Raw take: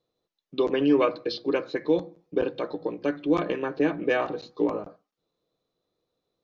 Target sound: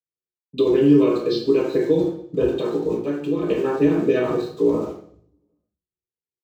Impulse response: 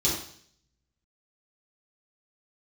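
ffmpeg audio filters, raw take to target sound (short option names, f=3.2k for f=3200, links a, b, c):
-filter_complex "[0:a]highshelf=f=4.6k:g=-8,acrossover=split=110|570[a][b][c];[a]aecho=1:1:436:0.501[d];[c]aeval=exprs='val(0)*gte(abs(val(0)),0.00316)':c=same[e];[d][b][e]amix=inputs=3:normalize=0,asettb=1/sr,asplit=3[f][g][h];[f]atrim=end=2.944[i];[g]atrim=start=2.94:end=3.49,asetpts=PTS-STARTPTS,afade=t=in:d=0.004:c=qsin,afade=t=out:st=0.546:d=0.004:c=qsin,acompressor=threshold=-28dB:ratio=6[j];[h]atrim=start=3.486[k];[i][j]acrossfade=d=0.004:c1=hsin:c2=qsin[l];[l][k]acrossfade=d=0.004:c1=qsin:c2=hsin,tremolo=f=12:d=0.5,agate=range=-33dB:threshold=-57dB:ratio=3:detection=peak[m];[1:a]atrim=start_sample=2205,asetrate=48510,aresample=44100[n];[m][n]afir=irnorm=-1:irlink=0,acrossover=split=290|3000[o][p][q];[p]acompressor=threshold=-16dB:ratio=6[r];[o][r][q]amix=inputs=3:normalize=0,volume=-2dB"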